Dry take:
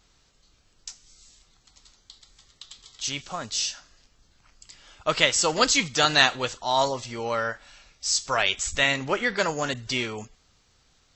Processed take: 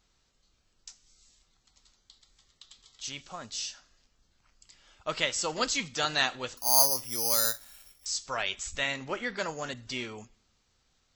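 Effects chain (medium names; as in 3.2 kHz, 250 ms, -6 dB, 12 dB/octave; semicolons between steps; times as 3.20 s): on a send at -19 dB: reverberation RT60 0.60 s, pre-delay 3 ms; 6.57–8.06 s: on the sum: careless resampling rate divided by 8×, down filtered, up zero stuff; trim -8.5 dB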